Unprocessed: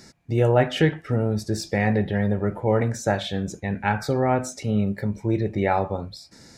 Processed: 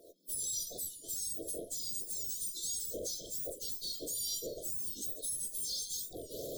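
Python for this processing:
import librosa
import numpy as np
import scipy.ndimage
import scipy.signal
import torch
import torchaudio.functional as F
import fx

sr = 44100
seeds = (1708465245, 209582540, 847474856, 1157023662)

y = fx.octave_mirror(x, sr, pivot_hz=1900.0)
y = fx.recorder_agc(y, sr, target_db=-17.5, rise_db_per_s=57.0, max_gain_db=30)
y = fx.tube_stage(y, sr, drive_db=28.0, bias=0.45)
y = fx.brickwall_bandstop(y, sr, low_hz=680.0, high_hz=3100.0)
y = fx.peak_eq(y, sr, hz=630.0, db=-7.5, octaves=0.34)
y = y + 10.0 ** (-17.0 / 20.0) * np.pad(y, (int(625 * sr / 1000.0), 0))[:len(y)]
y = fx.record_warp(y, sr, rpm=45.0, depth_cents=160.0)
y = F.gain(torch.from_numpy(y), -5.5).numpy()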